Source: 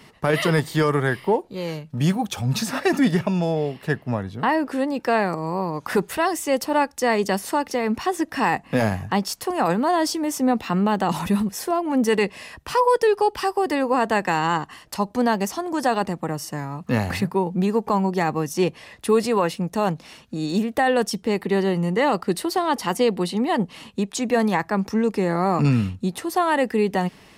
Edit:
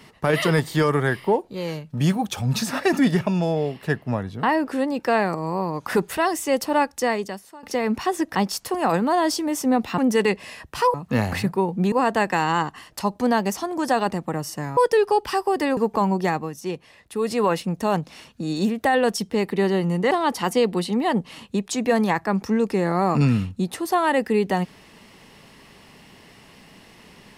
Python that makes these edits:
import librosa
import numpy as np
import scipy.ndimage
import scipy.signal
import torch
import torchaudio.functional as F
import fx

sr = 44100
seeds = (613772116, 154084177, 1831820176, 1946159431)

y = fx.edit(x, sr, fx.fade_out_to(start_s=7.01, length_s=0.62, curve='qua', floor_db=-22.0),
    fx.cut(start_s=8.35, length_s=0.76),
    fx.cut(start_s=10.74, length_s=1.17),
    fx.swap(start_s=12.87, length_s=1.0, other_s=16.72, other_length_s=0.98),
    fx.fade_down_up(start_s=18.2, length_s=1.14, db=-8.0, fade_s=0.23),
    fx.cut(start_s=22.04, length_s=0.51), tone=tone)